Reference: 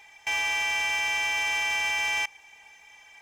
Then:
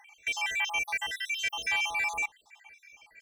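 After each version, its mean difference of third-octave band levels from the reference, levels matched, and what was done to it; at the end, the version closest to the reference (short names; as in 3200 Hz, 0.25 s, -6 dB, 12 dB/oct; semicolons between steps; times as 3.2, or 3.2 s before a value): 6.5 dB: random spectral dropouts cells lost 67%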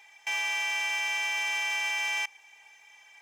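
2.0 dB: HPF 630 Hz 6 dB/oct; gain -2.5 dB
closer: second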